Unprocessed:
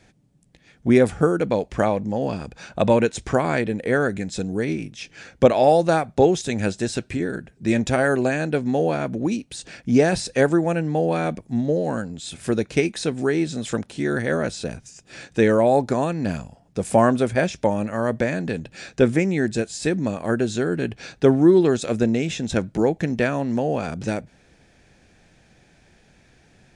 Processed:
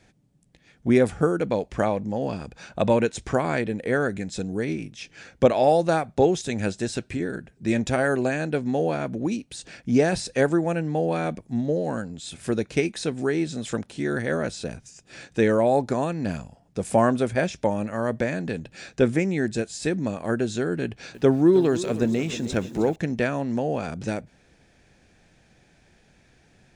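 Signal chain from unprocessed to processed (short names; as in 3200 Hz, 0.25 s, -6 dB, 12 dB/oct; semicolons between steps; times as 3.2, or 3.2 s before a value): 20.83–22.96 lo-fi delay 0.313 s, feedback 55%, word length 7-bit, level -14 dB; gain -3 dB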